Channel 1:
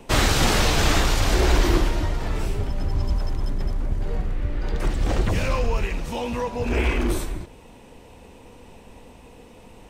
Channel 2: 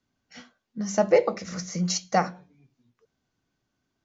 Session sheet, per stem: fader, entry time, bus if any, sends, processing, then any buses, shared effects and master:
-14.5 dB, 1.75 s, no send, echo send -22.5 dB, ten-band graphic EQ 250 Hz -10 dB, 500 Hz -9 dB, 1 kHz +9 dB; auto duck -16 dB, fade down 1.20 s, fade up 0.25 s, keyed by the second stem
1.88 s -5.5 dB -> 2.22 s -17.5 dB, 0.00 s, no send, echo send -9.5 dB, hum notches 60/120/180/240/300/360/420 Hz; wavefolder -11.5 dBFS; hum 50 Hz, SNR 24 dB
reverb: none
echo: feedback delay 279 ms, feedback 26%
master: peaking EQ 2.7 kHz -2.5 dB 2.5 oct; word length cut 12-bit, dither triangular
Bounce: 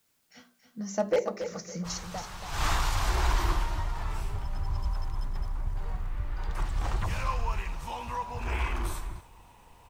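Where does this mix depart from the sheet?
stem 1 -14.5 dB -> -7.0 dB; stem 2: missing hum 50 Hz, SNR 24 dB

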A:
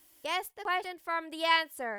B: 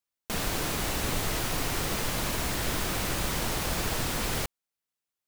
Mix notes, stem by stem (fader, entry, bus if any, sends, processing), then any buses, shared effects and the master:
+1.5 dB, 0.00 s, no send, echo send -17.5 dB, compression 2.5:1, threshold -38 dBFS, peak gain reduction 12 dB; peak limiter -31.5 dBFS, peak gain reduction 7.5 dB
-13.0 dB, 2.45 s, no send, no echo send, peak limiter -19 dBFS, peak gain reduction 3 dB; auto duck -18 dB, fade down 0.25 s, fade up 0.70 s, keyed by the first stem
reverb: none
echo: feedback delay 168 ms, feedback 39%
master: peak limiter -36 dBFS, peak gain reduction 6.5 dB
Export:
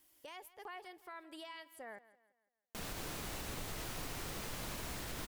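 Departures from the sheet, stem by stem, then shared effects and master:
stem A +1.5 dB -> -8.0 dB; master: missing peak limiter -36 dBFS, peak gain reduction 6.5 dB

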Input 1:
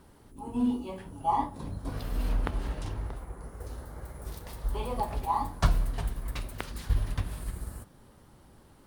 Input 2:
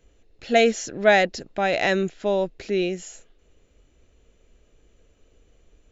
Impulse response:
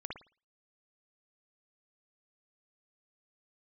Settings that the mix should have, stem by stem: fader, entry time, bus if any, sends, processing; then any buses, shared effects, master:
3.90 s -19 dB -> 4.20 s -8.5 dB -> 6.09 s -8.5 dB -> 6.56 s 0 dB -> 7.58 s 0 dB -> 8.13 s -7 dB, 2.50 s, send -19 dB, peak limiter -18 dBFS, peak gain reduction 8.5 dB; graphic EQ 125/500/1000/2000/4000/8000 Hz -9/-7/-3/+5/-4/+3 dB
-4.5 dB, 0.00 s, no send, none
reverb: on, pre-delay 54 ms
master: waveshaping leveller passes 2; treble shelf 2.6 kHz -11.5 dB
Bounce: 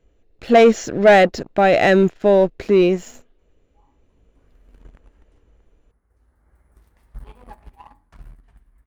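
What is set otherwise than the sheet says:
stem 1 -19.0 dB -> -29.0 dB; stem 2 -4.5 dB -> +3.0 dB

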